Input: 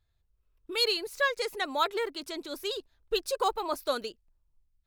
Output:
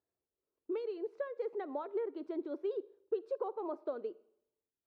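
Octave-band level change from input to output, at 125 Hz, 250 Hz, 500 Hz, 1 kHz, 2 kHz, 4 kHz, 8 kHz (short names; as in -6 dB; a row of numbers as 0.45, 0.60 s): n/a, -1.0 dB, -4.5 dB, -14.0 dB, -23.5 dB, under -30 dB, under -35 dB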